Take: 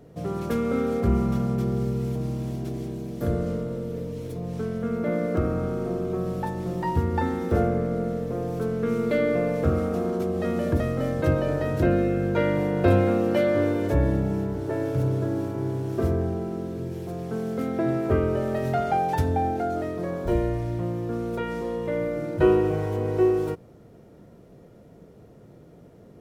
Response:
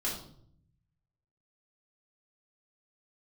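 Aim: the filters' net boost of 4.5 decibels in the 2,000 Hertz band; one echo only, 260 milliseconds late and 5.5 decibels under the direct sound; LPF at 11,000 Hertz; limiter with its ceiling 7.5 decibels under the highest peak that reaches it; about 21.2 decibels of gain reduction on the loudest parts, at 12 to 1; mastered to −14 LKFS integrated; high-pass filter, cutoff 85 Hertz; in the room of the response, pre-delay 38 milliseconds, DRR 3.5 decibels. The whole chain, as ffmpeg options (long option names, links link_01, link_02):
-filter_complex "[0:a]highpass=85,lowpass=11000,equalizer=frequency=2000:width_type=o:gain=5.5,acompressor=threshold=-36dB:ratio=12,alimiter=level_in=9.5dB:limit=-24dB:level=0:latency=1,volume=-9.5dB,aecho=1:1:260:0.531,asplit=2[link_01][link_02];[1:a]atrim=start_sample=2205,adelay=38[link_03];[link_02][link_03]afir=irnorm=-1:irlink=0,volume=-8dB[link_04];[link_01][link_04]amix=inputs=2:normalize=0,volume=23.5dB"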